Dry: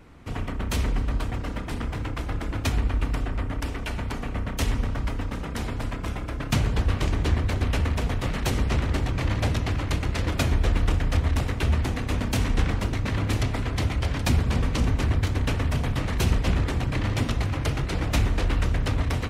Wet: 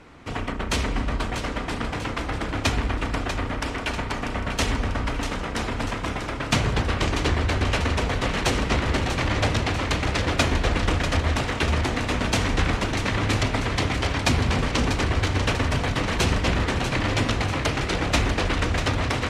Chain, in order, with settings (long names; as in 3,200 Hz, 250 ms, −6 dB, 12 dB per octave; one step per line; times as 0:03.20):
low-pass filter 8,100 Hz 12 dB per octave
low-shelf EQ 220 Hz −10 dB
echo with a time of its own for lows and highs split 330 Hz, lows 116 ms, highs 642 ms, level −8 dB
level +6.5 dB